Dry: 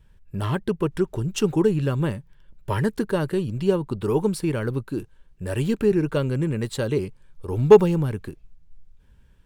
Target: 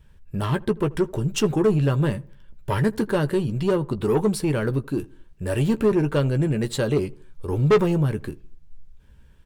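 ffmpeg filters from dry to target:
-filter_complex "[0:a]asoftclip=type=tanh:threshold=0.141,asplit=2[s0][s1];[s1]adelay=14,volume=0.316[s2];[s0][s2]amix=inputs=2:normalize=0,asplit=2[s3][s4];[s4]adelay=81,lowpass=f=1200:p=1,volume=0.075,asplit=2[s5][s6];[s6]adelay=81,lowpass=f=1200:p=1,volume=0.48,asplit=2[s7][s8];[s8]adelay=81,lowpass=f=1200:p=1,volume=0.48[s9];[s5][s7][s9]amix=inputs=3:normalize=0[s10];[s3][s10]amix=inputs=2:normalize=0,volume=1.41"

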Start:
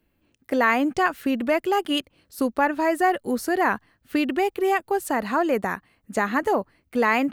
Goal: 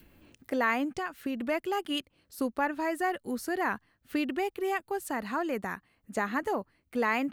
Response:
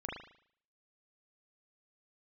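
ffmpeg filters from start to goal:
-filter_complex "[0:a]asettb=1/sr,asplit=3[s0][s1][s2];[s0]atrim=end=0.844[s3];[s1]atrim=start=0.84:end=1.37,asetpts=PTS-STARTPTS,afade=t=in:d=0.004:c=qsin,afade=t=out:st=0.526:d=0.004:c=qsin,acompressor=threshold=0.0794:ratio=5[s4];[s2]atrim=start=1.366[s5];[s3][s4]acrossfade=d=0.004:c1=hsin:c2=qsin[s6];[s6][s5]acrossfade=d=0.004:c1=qsin:c2=hsin,adynamicequalizer=threshold=0.02:dfrequency=590:dqfactor=1:tfrequency=590:tqfactor=1:attack=5:release=100:ratio=0.375:range=2.5:mode=cutabove:tftype=bell,acompressor=mode=upward:threshold=0.0158:ratio=2.5,volume=0.447"

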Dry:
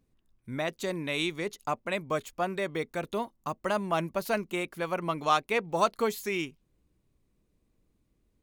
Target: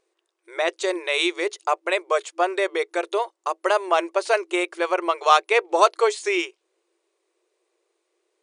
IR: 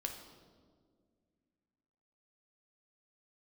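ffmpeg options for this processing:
-af "afftfilt=real='re*between(b*sr/4096,330,9800)':imag='im*between(b*sr/4096,330,9800)':win_size=4096:overlap=0.75,volume=2.82"

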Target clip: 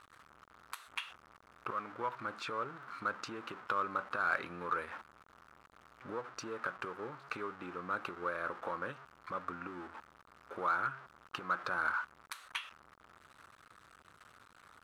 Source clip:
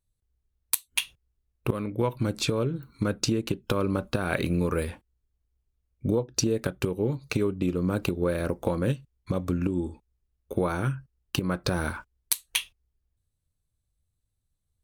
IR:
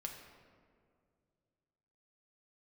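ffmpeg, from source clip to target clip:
-filter_complex "[0:a]aeval=exprs='val(0)+0.5*0.0211*sgn(val(0))':c=same,bandpass=f=1300:t=q:w=4:csg=0,asplit=2[s0][s1];[s1]asoftclip=type=hard:threshold=0.0237,volume=0.355[s2];[s0][s2]amix=inputs=2:normalize=0,volume=1.12"

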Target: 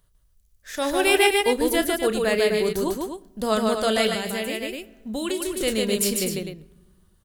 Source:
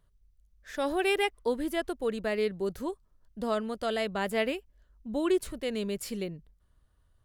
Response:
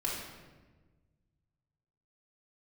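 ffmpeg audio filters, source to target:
-filter_complex "[0:a]highshelf=f=4000:g=11.5,aecho=1:1:32.07|148.7|253.6:0.282|0.708|0.398,dynaudnorm=f=290:g=7:m=1.58,asplit=2[s0][s1];[1:a]atrim=start_sample=2205,asetrate=52920,aresample=44100[s2];[s1][s2]afir=irnorm=-1:irlink=0,volume=0.0708[s3];[s0][s3]amix=inputs=2:normalize=0,asettb=1/sr,asplit=3[s4][s5][s6];[s4]atrim=end=4.144[s7];[s5]atrim=start=4.14:end=5.61,asetpts=PTS-STARTPTS,afade=t=in:d=0.004:c=qsin,afade=t=out:st=1.466:d=0.004:c=qsin,acrossover=split=490|2000[s8][s9][s10];[s8]acompressor=threshold=0.0282:ratio=4[s11];[s9]acompressor=threshold=0.01:ratio=4[s12];[s10]acompressor=threshold=0.0224:ratio=4[s13];[s11][s12][s13]amix=inputs=3:normalize=0[s14];[s6]atrim=start=5.606[s15];[s7][s14]acrossfade=d=0.004:c1=hsin:c2=qsin[s16];[s16][s15]acrossfade=d=0.004:c1=qsin:c2=hsin,volume=1.26"

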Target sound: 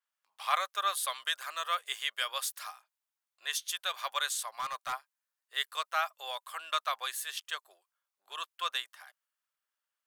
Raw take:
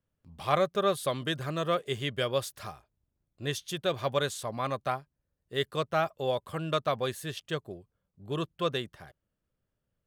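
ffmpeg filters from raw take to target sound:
-filter_complex "[0:a]highpass=f=950:w=0.5412,highpass=f=950:w=1.3066,asettb=1/sr,asplit=3[s0][s1][s2];[s0]atrim=end=4.484[s3];[s1]atrim=start=4.48:end=4.93,asetpts=PTS-STARTPTS,afade=t=in:d=0.004:c=qsin,afade=t=out:st=0.446:d=0.004:c=qsin,volume=42.2,asoftclip=hard,volume=0.0237[s4];[s2]atrim=start=4.926[s5];[s3][s4]acrossfade=d=0.004:c1=hsin:c2=qsin[s6];[s6][s5]acrossfade=d=0.004:c1=qsin:c2=hsin,adynamicequalizer=threshold=0.00355:dfrequency=6200:dqfactor=0.7:tfrequency=6200:tqfactor=0.7:attack=5:release=100:ratio=0.375:range=3:mode=boostabove:tftype=highshelf,volume=1.19"

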